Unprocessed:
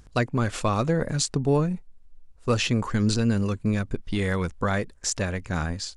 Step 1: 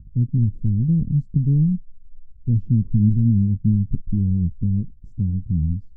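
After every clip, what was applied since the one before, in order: inverse Chebyshev low-pass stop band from 690 Hz, stop band 60 dB; gain +9 dB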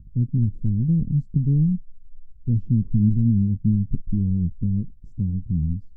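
bell 78 Hz -3 dB 2.1 oct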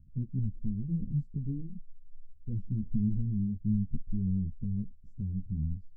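ensemble effect; gain -7.5 dB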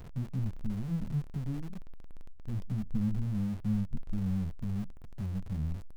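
zero-crossing step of -39 dBFS; gain -2.5 dB

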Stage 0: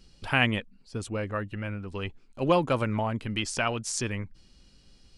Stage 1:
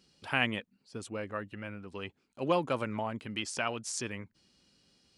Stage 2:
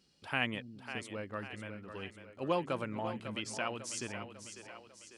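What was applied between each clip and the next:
Bessel high-pass 170 Hz, order 2; gain -5 dB
split-band echo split 310 Hz, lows 0.211 s, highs 0.548 s, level -9.5 dB; gain -4 dB

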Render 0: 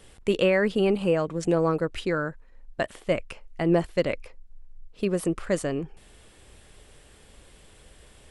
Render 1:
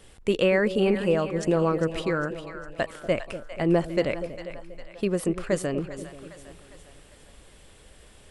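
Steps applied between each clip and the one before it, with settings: split-band echo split 640 Hz, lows 0.241 s, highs 0.403 s, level -11 dB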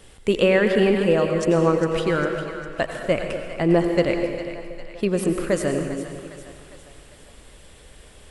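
plate-style reverb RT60 1.3 s, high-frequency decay 1×, pre-delay 80 ms, DRR 5.5 dB; gain +3.5 dB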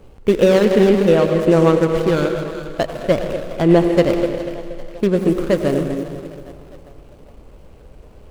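median filter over 25 samples; gain +6 dB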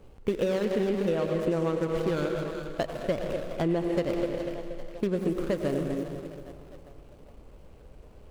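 compressor 6:1, threshold -16 dBFS, peak gain reduction 9 dB; gain -7.5 dB

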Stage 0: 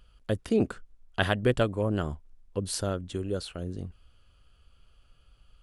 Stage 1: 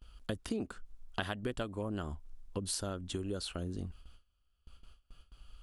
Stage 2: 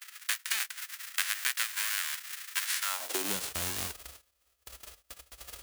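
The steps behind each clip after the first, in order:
gate with hold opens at -48 dBFS; graphic EQ 125/500/2000 Hz -8/-6/-4 dB; compressor 6:1, threshold -39 dBFS, peak gain reduction 14.5 dB; gain +5 dB
spectral whitening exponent 0.1; in parallel at -3.5 dB: crossover distortion -55.5 dBFS; on the sum: high-pass sweep 1700 Hz -> 61 Hz, 2.81–3.58

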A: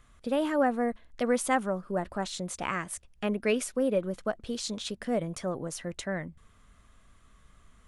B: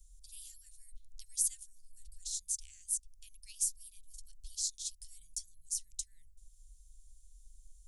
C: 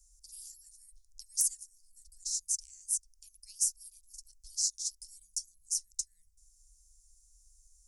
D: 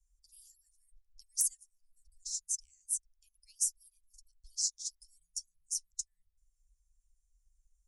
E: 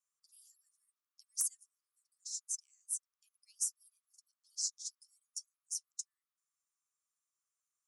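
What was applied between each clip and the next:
inverse Chebyshev band-stop 220–1200 Hz, stop band 80 dB; gain +5 dB
wrapped overs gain 17 dB; resonant high shelf 4200 Hz +8.5 dB, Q 3; added harmonics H 2 -38 dB, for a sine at -7.5 dBFS; gain -7.5 dB
per-bin expansion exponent 1.5
ladder high-pass 1100 Hz, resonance 75%; gain +8 dB

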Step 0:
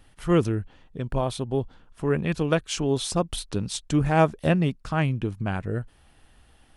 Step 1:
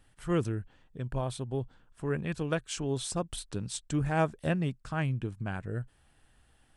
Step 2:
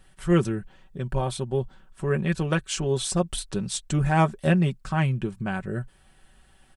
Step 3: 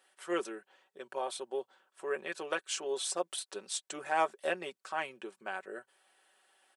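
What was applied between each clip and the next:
thirty-one-band EQ 125 Hz +5 dB, 1600 Hz +4 dB, 8000 Hz +7 dB; gain -8.5 dB
comb 5.3 ms, depth 62%; gain +6 dB
HPF 410 Hz 24 dB/oct; gain -6 dB

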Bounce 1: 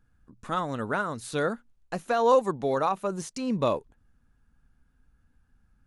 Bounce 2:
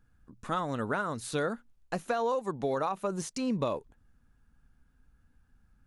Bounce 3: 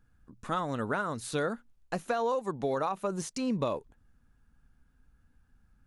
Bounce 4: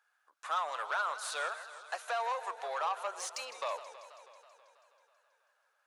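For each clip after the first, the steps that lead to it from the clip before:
compressor 12:1, threshold -26 dBFS, peak gain reduction 11 dB
nothing audible
overdrive pedal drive 16 dB, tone 5900 Hz, clips at -16 dBFS; inverse Chebyshev high-pass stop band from 190 Hz, stop band 60 dB; warbling echo 0.162 s, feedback 71%, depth 176 cents, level -13.5 dB; gain -6.5 dB

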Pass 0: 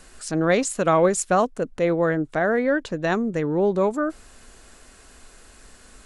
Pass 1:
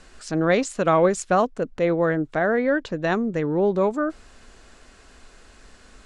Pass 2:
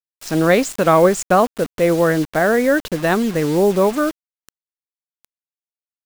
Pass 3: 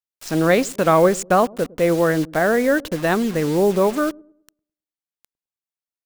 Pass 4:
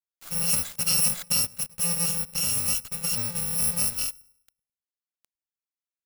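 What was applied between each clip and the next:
LPF 5900 Hz 12 dB/oct
requantised 6-bit, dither none; gain +5.5 dB
dark delay 0.105 s, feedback 34%, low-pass 470 Hz, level -20 dB; gain -2 dB
FFT order left unsorted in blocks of 128 samples; gain -8.5 dB

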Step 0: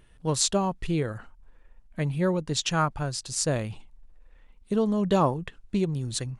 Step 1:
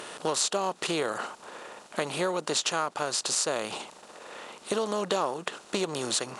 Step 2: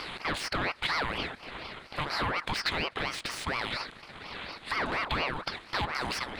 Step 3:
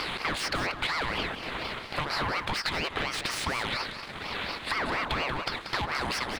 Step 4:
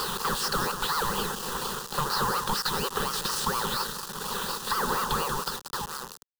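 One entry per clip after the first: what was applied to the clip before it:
per-bin compression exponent 0.6; HPF 430 Hz 12 dB/oct; compressor 4:1, threshold -32 dBFS, peak gain reduction 13 dB; gain +6 dB
soft clip -26.5 dBFS, distortion -10 dB; resonant high shelf 4200 Hz -10.5 dB, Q 3; ring modulator with a swept carrier 1100 Hz, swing 60%, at 4.2 Hz; gain +4 dB
sample leveller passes 1; compressor, threshold -30 dBFS, peak gain reduction 7.5 dB; echo 0.185 s -9.5 dB; gain +3 dB
ending faded out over 1.24 s; requantised 6-bit, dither none; fixed phaser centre 440 Hz, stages 8; gain +5.5 dB

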